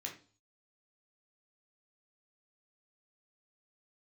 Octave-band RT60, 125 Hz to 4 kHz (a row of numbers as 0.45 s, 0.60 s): 0.65 s, 0.45 s, 0.40 s, 0.40 s, 0.35 s, 0.45 s